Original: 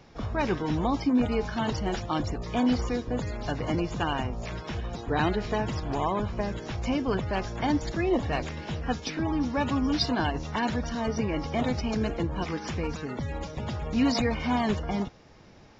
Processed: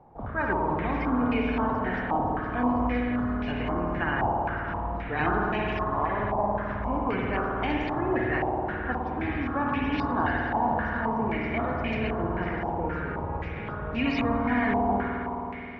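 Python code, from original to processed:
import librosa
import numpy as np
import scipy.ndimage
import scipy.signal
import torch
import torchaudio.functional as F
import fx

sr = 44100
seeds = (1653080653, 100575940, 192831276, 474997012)

y = fx.rev_spring(x, sr, rt60_s=3.7, pass_ms=(53,), chirp_ms=45, drr_db=-2.5)
y = fx.filter_held_lowpass(y, sr, hz=3.8, low_hz=840.0, high_hz=2500.0)
y = y * librosa.db_to_amplitude(-5.5)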